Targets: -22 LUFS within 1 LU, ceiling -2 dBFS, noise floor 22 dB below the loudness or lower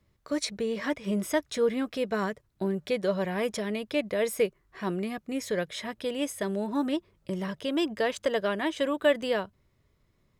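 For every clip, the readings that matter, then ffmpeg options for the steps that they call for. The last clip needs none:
loudness -30.0 LUFS; peak level -12.5 dBFS; loudness target -22.0 LUFS
-> -af "volume=2.51"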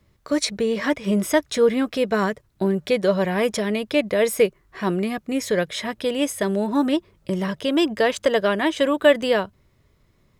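loudness -22.0 LUFS; peak level -4.5 dBFS; noise floor -62 dBFS

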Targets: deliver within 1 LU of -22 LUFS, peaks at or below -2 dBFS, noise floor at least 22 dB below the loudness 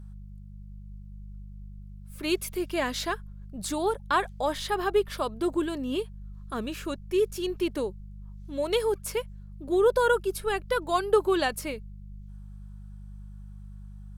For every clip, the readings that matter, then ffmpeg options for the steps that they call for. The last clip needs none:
hum 50 Hz; highest harmonic 200 Hz; hum level -40 dBFS; loudness -28.5 LUFS; peak level -9.5 dBFS; loudness target -22.0 LUFS
-> -af "bandreject=f=50:t=h:w=4,bandreject=f=100:t=h:w=4,bandreject=f=150:t=h:w=4,bandreject=f=200:t=h:w=4"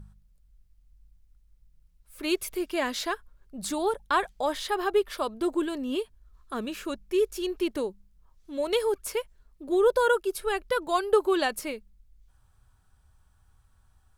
hum not found; loudness -28.5 LUFS; peak level -10.0 dBFS; loudness target -22.0 LUFS
-> -af "volume=2.11"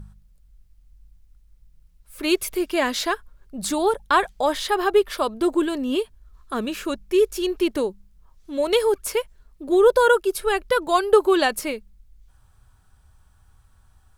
loudness -22.0 LUFS; peak level -3.5 dBFS; noise floor -57 dBFS

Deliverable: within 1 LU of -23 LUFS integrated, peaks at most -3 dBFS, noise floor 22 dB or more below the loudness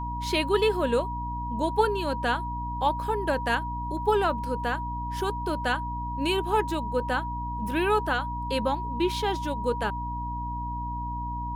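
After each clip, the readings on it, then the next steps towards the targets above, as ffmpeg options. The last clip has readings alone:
hum 60 Hz; highest harmonic 300 Hz; hum level -32 dBFS; steady tone 960 Hz; tone level -32 dBFS; loudness -28.0 LUFS; peak level -10.5 dBFS; loudness target -23.0 LUFS
-> -af "bandreject=f=60:t=h:w=6,bandreject=f=120:t=h:w=6,bandreject=f=180:t=h:w=6,bandreject=f=240:t=h:w=6,bandreject=f=300:t=h:w=6"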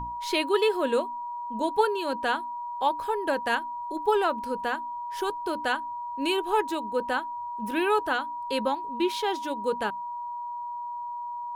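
hum not found; steady tone 960 Hz; tone level -32 dBFS
-> -af "bandreject=f=960:w=30"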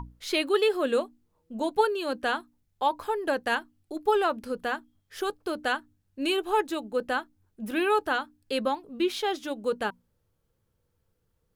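steady tone not found; loudness -28.5 LUFS; peak level -10.5 dBFS; loudness target -23.0 LUFS
-> -af "volume=1.88"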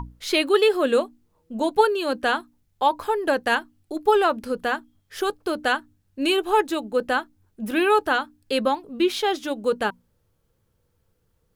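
loudness -23.0 LUFS; peak level -5.5 dBFS; noise floor -69 dBFS

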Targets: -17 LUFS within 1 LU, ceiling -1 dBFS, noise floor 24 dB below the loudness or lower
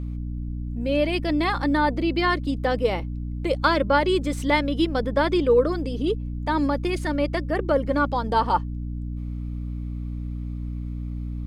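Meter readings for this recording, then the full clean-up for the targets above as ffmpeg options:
hum 60 Hz; highest harmonic 300 Hz; hum level -28 dBFS; loudness -24.5 LUFS; peak level -6.0 dBFS; loudness target -17.0 LUFS
-> -af "bandreject=f=60:t=h:w=6,bandreject=f=120:t=h:w=6,bandreject=f=180:t=h:w=6,bandreject=f=240:t=h:w=6,bandreject=f=300:t=h:w=6"
-af "volume=2.37,alimiter=limit=0.891:level=0:latency=1"

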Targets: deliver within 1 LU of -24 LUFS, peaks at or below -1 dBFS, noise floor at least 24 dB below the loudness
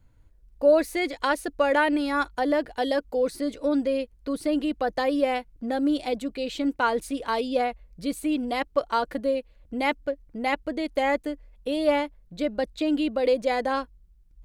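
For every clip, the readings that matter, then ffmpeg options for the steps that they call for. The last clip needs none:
loudness -26.5 LUFS; peak level -10.0 dBFS; loudness target -24.0 LUFS
-> -af "volume=1.33"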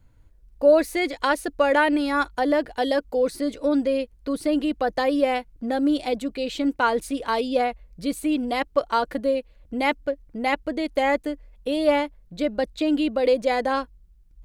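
loudness -24.0 LUFS; peak level -7.5 dBFS; noise floor -54 dBFS

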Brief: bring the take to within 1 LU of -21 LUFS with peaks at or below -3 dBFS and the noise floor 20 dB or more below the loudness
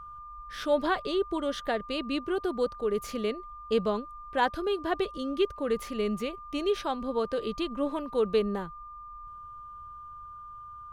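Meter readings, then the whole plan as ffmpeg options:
steady tone 1.2 kHz; tone level -42 dBFS; loudness -30.5 LUFS; peak level -13.5 dBFS; loudness target -21.0 LUFS
-> -af "bandreject=f=1200:w=30"
-af "volume=2.99"

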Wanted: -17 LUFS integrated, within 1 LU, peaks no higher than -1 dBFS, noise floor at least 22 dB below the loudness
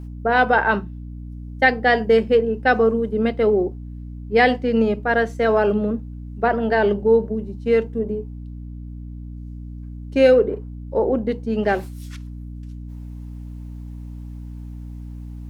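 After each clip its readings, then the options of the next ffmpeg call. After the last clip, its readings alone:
hum 60 Hz; highest harmonic 300 Hz; hum level -31 dBFS; loudness -19.5 LUFS; peak level -2.0 dBFS; loudness target -17.0 LUFS
-> -af "bandreject=f=60:t=h:w=6,bandreject=f=120:t=h:w=6,bandreject=f=180:t=h:w=6,bandreject=f=240:t=h:w=6,bandreject=f=300:t=h:w=6"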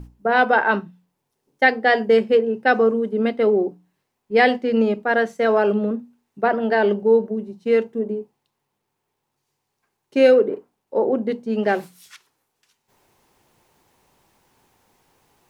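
hum not found; loudness -19.5 LUFS; peak level -2.0 dBFS; loudness target -17.0 LUFS
-> -af "volume=1.33,alimiter=limit=0.891:level=0:latency=1"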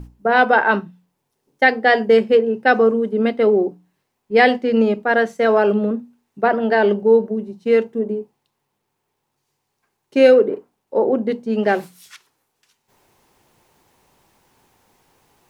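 loudness -17.0 LUFS; peak level -1.0 dBFS; noise floor -75 dBFS

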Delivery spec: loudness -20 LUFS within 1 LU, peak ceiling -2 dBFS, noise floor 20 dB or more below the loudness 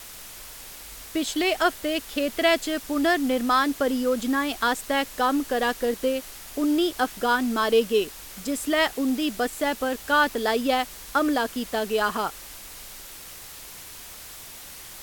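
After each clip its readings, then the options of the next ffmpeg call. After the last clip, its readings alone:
noise floor -42 dBFS; noise floor target -45 dBFS; loudness -24.5 LUFS; peak level -8.0 dBFS; loudness target -20.0 LUFS
-> -af "afftdn=nr=6:nf=-42"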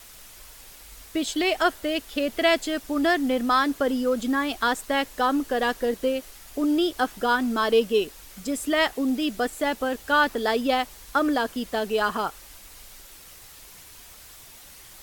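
noise floor -47 dBFS; loudness -24.5 LUFS; peak level -8.0 dBFS; loudness target -20.0 LUFS
-> -af "volume=1.68"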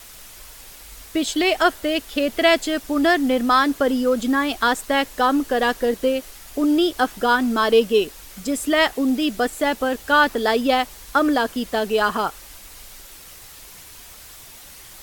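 loudness -20.0 LUFS; peak level -3.5 dBFS; noise floor -43 dBFS

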